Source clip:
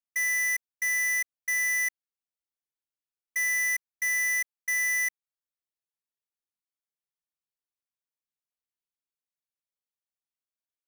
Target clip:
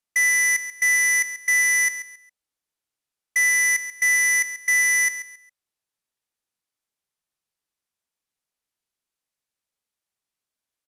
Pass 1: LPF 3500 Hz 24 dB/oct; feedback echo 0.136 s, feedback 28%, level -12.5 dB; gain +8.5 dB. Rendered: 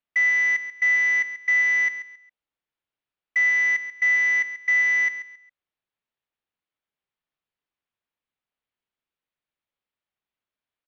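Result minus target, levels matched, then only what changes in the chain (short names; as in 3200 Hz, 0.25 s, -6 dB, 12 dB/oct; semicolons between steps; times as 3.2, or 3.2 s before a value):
8000 Hz band -19.5 dB
change: LPF 13000 Hz 24 dB/oct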